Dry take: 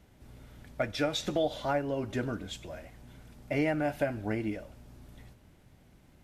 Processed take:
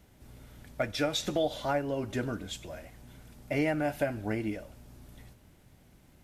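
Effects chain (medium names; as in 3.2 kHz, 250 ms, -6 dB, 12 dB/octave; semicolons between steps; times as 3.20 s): treble shelf 6.4 kHz +6.5 dB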